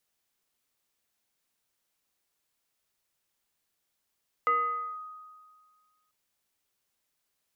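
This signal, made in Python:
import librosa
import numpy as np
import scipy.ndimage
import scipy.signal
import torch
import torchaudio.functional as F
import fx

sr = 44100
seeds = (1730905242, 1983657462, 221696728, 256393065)

y = fx.fm2(sr, length_s=1.64, level_db=-20.5, carrier_hz=1250.0, ratio=0.62, index=0.51, index_s=0.52, decay_s=1.79, shape='linear')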